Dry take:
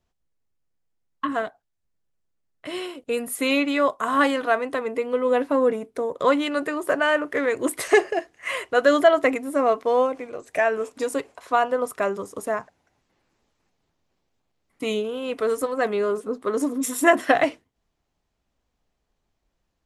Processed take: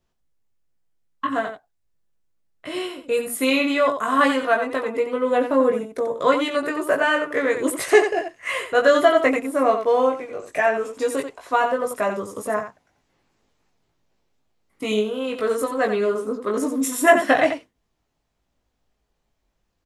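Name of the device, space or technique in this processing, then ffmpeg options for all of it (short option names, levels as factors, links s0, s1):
slapback doubling: -filter_complex "[0:a]asplit=3[s0][s1][s2];[s1]adelay=19,volume=0.708[s3];[s2]adelay=89,volume=0.422[s4];[s0][s3][s4]amix=inputs=3:normalize=0"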